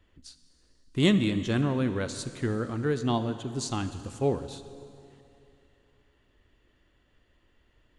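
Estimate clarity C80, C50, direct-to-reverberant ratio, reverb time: 12.0 dB, 11.5 dB, 10.5 dB, 2.8 s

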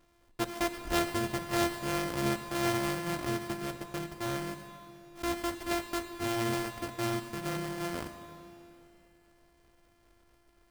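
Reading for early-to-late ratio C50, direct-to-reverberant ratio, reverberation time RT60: 9.5 dB, 8.5 dB, 2.9 s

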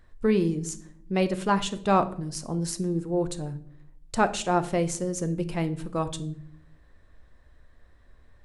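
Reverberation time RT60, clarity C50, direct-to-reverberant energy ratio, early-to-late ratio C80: 0.65 s, 15.5 dB, 10.5 dB, 19.5 dB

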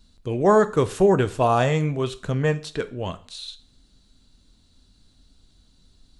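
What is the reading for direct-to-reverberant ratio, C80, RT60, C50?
11.0 dB, 22.0 dB, 0.45 s, 18.0 dB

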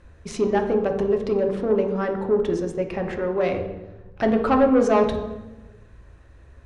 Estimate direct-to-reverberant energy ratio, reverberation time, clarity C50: 3.5 dB, 1.1 s, 7.5 dB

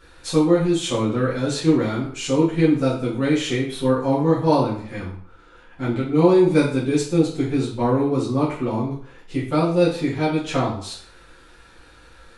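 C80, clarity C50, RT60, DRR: 9.5 dB, 5.5 dB, 0.55 s, -10.0 dB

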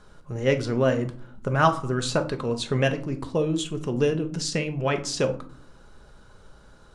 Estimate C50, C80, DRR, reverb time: 14.0 dB, 19.0 dB, 6.0 dB, 0.55 s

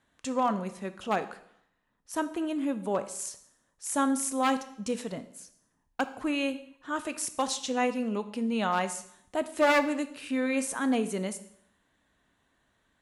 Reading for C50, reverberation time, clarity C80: 13.5 dB, 0.75 s, 17.0 dB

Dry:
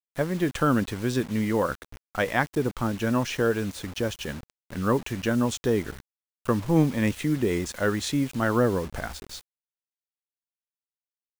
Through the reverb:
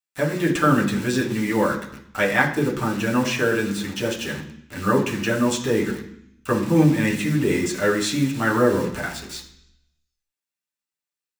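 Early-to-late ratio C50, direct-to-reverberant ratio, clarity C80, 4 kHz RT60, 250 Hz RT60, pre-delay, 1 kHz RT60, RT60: 9.0 dB, -3.5 dB, 12.5 dB, 0.80 s, 0.90 s, 7 ms, 0.70 s, 0.65 s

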